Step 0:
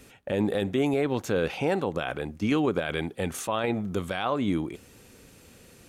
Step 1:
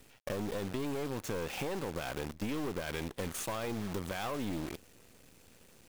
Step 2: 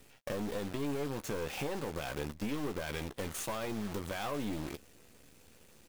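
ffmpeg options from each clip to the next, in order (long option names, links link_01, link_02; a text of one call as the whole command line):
ffmpeg -i in.wav -af "acrusher=bits=7:dc=4:mix=0:aa=0.000001,aeval=exprs='(tanh(22.4*val(0)+0.65)-tanh(0.65))/22.4':channel_layout=same,acompressor=threshold=-32dB:ratio=6" out.wav
ffmpeg -i in.wav -filter_complex "[0:a]asplit=2[link_01][link_02];[link_02]adelay=14,volume=-9dB[link_03];[link_01][link_03]amix=inputs=2:normalize=0,volume=-1dB" out.wav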